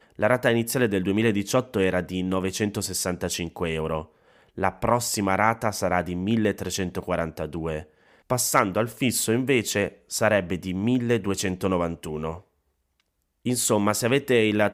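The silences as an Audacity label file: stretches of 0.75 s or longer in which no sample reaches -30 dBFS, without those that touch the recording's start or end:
12.360000	13.460000	silence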